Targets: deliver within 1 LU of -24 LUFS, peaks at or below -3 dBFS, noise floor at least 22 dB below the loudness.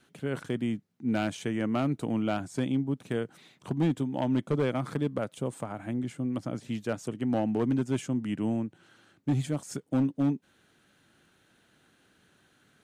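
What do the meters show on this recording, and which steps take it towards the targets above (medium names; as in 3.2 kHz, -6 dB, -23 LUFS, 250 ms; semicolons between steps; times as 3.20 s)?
clipped samples 0.9%; clipping level -20.0 dBFS; loudness -31.0 LUFS; peak level -20.0 dBFS; loudness target -24.0 LUFS
-> clip repair -20 dBFS; trim +7 dB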